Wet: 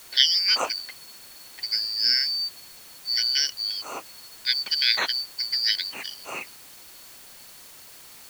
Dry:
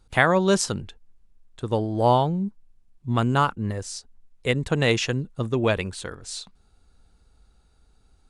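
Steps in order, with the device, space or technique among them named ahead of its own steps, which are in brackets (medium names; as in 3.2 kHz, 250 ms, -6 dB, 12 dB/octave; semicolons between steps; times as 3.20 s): split-band scrambled radio (four frequency bands reordered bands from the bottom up 4321; band-pass 320–3200 Hz; white noise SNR 19 dB); trim +5 dB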